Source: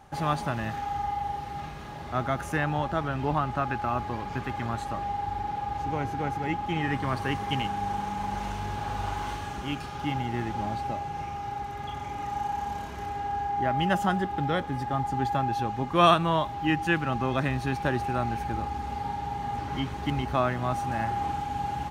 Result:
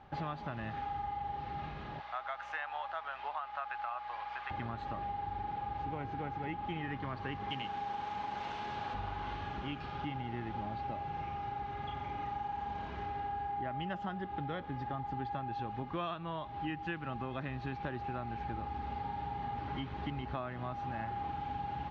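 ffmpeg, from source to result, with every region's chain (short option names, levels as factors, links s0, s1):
-filter_complex "[0:a]asettb=1/sr,asplit=3[s0][s1][s2];[s0]atrim=end=2.004[s3];[s1]atrim=start=2:end=4.51,asetpts=PTS-STARTPTS,afade=t=in:d=0.004:c=qsin,afade=t=out:st=2.506:d=0.004:c=qsin,highpass=f=720:w=0.5412,highpass=f=720:w=1.3066,aeval=exprs='val(0)+0.000891*(sin(2*PI*60*n/s)+sin(2*PI*2*60*n/s)/2+sin(2*PI*3*60*n/s)/3+sin(2*PI*4*60*n/s)/4+sin(2*PI*5*60*n/s)/5)':c=same[s4];[s2]atrim=start=4.506[s5];[s3][s4]acrossfade=d=0.004:c1=hsin:c2=qsin[s6];[s6][s5]acrossfade=d=0.004:c1=qsin:c2=hsin,asettb=1/sr,asplit=3[s7][s8][s9];[s7]atrim=end=7.504[s10];[s8]atrim=start=7.5:end=8.94,asetpts=PTS-STARTPTS,afade=t=in:d=0.004:c=qsin,afade=t=out:st=1.436:d=0.004:c=qsin,highpass=f=130:p=1,aemphasis=mode=production:type=50fm,bandreject=f=50:t=h:w=6,bandreject=f=100:t=h:w=6,bandreject=f=150:t=h:w=6,bandreject=f=200:t=h:w=6,bandreject=f=250:t=h:w=6,bandreject=f=300:t=h:w=6,bandreject=f=350:t=h:w=6,bandreject=f=400:t=h:w=6,bandreject=f=450:t=h:w=6[s11];[s9]atrim=start=8.936[s12];[s10][s11]acrossfade=d=0.004:c1=hsin:c2=qsin[s13];[s13][s12]acrossfade=d=0.004:c1=qsin:c2=hsin,lowpass=f=4000:w=0.5412,lowpass=f=4000:w=1.3066,acompressor=threshold=0.0251:ratio=6,volume=0.668"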